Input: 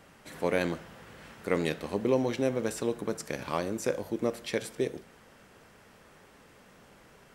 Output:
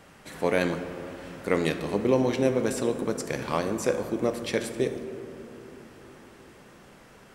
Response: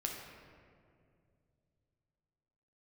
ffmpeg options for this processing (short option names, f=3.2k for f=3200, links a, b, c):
-filter_complex "[0:a]asplit=2[a][b];[1:a]atrim=start_sample=2205,asetrate=22932,aresample=44100[c];[b][c]afir=irnorm=-1:irlink=0,volume=-7.5dB[d];[a][d]amix=inputs=2:normalize=0"